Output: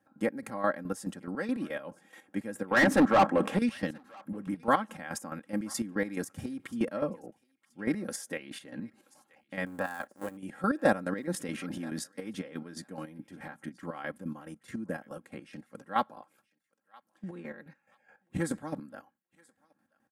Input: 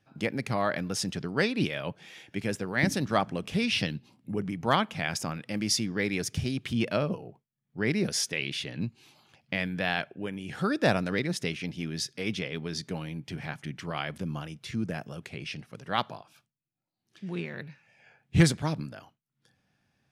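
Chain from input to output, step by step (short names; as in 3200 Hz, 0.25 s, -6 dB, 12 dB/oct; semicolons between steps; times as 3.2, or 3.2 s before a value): 9.66–10.37 cycle switcher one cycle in 2, muted; HPF 160 Hz 12 dB/oct; band shelf 3700 Hz -13 dB; notch 1200 Hz, Q 29; comb 3.7 ms, depth 66%; chopper 4.7 Hz, depth 65%, duty 35%; 2.71–3.59 overdrive pedal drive 30 dB, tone 1500 Hz, clips at -12 dBFS; thinning echo 0.979 s, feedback 29%, high-pass 1200 Hz, level -23 dB; 11.34–12.04 fast leveller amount 70%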